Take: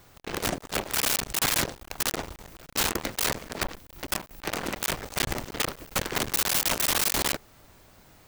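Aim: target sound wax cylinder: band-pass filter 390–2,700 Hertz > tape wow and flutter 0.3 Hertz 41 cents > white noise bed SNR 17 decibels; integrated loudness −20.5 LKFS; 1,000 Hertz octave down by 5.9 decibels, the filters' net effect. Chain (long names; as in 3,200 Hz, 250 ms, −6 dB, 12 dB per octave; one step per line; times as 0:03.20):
band-pass filter 390–2,700 Hz
parametric band 1,000 Hz −7.5 dB
tape wow and flutter 0.3 Hz 41 cents
white noise bed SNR 17 dB
level +15 dB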